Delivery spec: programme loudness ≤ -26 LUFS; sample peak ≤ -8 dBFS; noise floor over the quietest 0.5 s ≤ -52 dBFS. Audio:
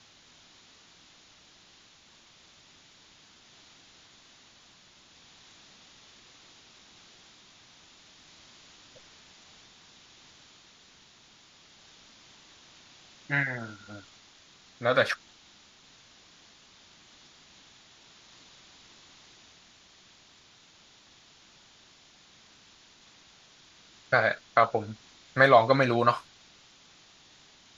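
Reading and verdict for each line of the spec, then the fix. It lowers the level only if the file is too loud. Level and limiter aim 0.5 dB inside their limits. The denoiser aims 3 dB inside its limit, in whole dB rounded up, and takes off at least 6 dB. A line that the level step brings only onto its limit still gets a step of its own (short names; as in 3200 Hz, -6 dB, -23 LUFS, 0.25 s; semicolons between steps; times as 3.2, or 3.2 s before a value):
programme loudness -25.5 LUFS: fail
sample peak -6.0 dBFS: fail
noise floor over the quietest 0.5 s -58 dBFS: OK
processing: gain -1 dB; limiter -8.5 dBFS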